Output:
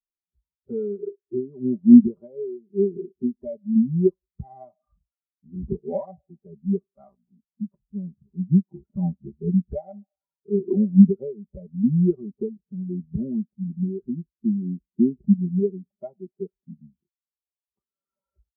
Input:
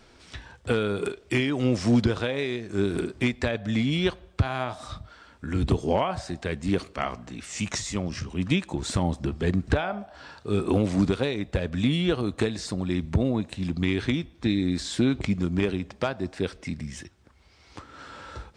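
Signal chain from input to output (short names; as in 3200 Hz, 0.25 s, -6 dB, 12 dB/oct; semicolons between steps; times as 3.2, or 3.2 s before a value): LPF 1200 Hz 24 dB/oct; comb 5.1 ms, depth 77%; in parallel at -5 dB: sample-and-hold 16×; on the sum: spectral expander 2.5:1; gain +3.5 dB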